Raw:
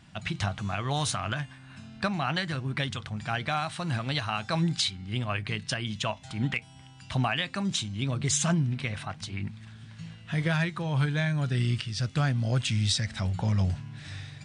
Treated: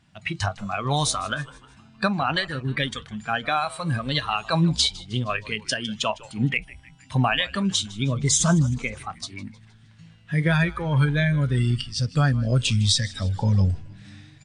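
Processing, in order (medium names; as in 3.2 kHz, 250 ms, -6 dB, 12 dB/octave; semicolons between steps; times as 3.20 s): spectral noise reduction 13 dB; frequency-shifting echo 156 ms, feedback 52%, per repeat -100 Hz, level -20 dB; trim +6.5 dB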